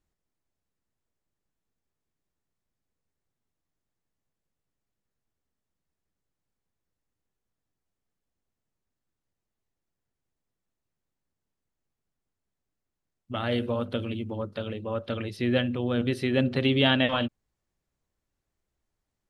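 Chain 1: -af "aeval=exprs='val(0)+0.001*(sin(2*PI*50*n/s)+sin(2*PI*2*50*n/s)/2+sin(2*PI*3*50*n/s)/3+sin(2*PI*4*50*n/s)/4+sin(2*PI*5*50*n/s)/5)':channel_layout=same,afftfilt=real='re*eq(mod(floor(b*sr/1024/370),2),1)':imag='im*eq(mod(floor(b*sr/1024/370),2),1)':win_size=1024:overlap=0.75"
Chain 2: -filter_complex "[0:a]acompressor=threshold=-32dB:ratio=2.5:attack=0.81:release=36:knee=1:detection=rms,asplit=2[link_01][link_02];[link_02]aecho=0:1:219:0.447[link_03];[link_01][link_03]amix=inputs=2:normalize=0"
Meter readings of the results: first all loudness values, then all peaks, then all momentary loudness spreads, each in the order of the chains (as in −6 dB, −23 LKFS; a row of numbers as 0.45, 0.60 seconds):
−32.0, −34.5 LKFS; −13.5, −19.5 dBFS; 11, 6 LU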